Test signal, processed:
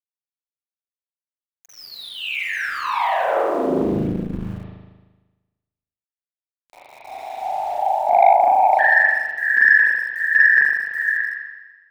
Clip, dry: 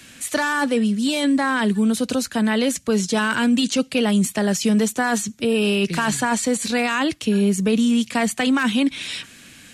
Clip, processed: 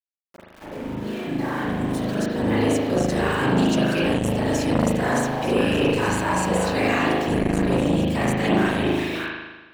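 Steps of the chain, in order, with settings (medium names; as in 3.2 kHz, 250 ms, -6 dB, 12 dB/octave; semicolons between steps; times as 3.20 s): fade-in on the opening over 2.93 s; high-pass 120 Hz 24 dB/octave; peaking EQ 1.4 kHz -5.5 dB 0.43 oct; repeats whose band climbs or falls 294 ms, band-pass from 610 Hz, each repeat 1.4 oct, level -2 dB; dynamic bell 3.3 kHz, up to -5 dB, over -43 dBFS, Q 6.7; level-controlled noise filter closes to 660 Hz, open at -18.5 dBFS; whisper effect; small samples zeroed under -34 dBFS; spring tank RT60 1.2 s, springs 38 ms, chirp 60 ms, DRR -6.5 dB; transformer saturation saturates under 670 Hz; trim -6.5 dB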